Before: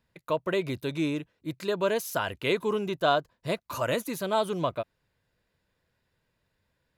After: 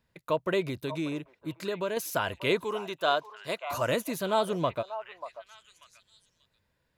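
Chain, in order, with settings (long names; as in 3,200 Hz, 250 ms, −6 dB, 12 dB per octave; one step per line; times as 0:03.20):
0:00.64–0:01.97: downward compressor 2 to 1, threshold −32 dBFS, peak gain reduction 6.5 dB
0:02.64–0:03.71: high-pass filter 640 Hz 6 dB per octave
echo through a band-pass that steps 588 ms, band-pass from 850 Hz, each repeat 1.4 octaves, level −9.5 dB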